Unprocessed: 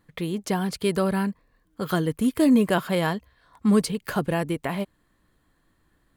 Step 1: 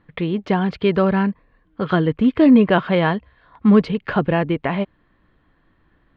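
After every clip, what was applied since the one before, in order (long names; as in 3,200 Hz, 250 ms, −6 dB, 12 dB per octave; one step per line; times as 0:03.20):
low-pass filter 3,200 Hz 24 dB per octave
level +6.5 dB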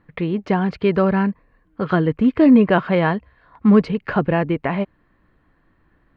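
parametric band 3,400 Hz −7.5 dB 0.39 octaves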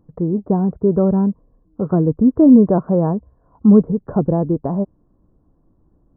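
Gaussian smoothing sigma 11 samples
level +3.5 dB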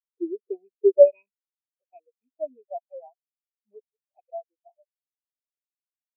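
loose part that buzzes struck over −16 dBFS, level −8 dBFS
high-pass filter sweep 350 Hz → 740 Hz, 0:00.02–0:01.71
every bin expanded away from the loudest bin 4 to 1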